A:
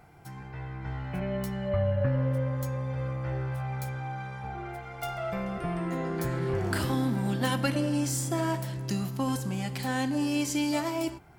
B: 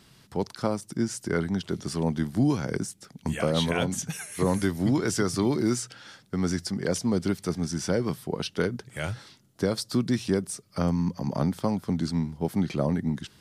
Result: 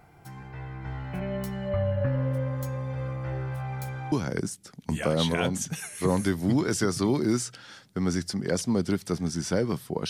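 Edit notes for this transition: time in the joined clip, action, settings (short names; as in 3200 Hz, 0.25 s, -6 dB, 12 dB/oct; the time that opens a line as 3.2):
A
4.12 switch to B from 2.49 s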